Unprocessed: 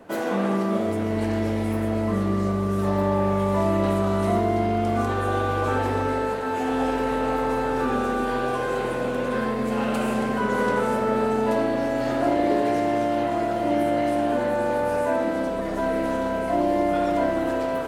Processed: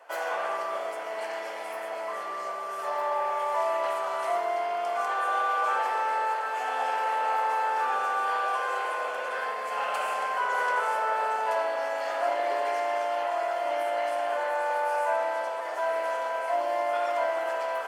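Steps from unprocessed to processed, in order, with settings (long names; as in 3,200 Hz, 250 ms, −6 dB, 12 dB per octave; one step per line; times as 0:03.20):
high-pass filter 650 Hz 24 dB per octave
high-shelf EQ 6,100 Hz −5.5 dB
notch filter 3,800 Hz, Q 8
on a send: delay with a low-pass on its return 108 ms, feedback 80%, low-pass 1,800 Hz, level −14 dB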